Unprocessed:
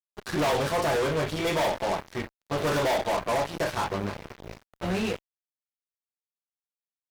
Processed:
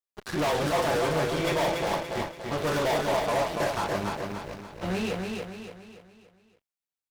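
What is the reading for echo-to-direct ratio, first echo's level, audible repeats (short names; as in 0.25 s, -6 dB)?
-3.0 dB, -4.0 dB, 5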